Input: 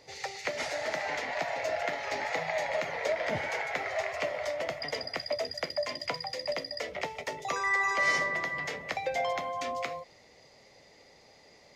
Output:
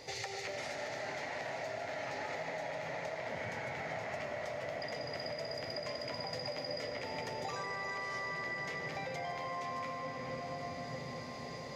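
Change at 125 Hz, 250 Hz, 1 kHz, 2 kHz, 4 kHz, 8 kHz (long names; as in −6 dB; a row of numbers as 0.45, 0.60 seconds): +2.0, −1.0, −6.5, −9.0, −6.0, −7.0 decibels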